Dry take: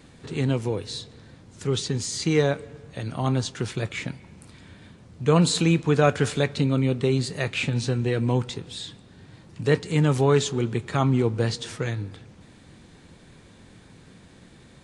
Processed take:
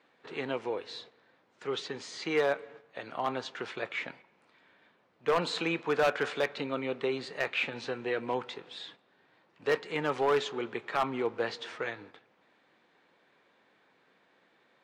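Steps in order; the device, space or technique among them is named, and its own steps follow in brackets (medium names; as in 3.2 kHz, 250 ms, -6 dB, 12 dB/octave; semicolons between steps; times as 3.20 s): walkie-talkie (band-pass 560–2600 Hz; hard clipper -20.5 dBFS, distortion -13 dB; gate -51 dBFS, range -8 dB)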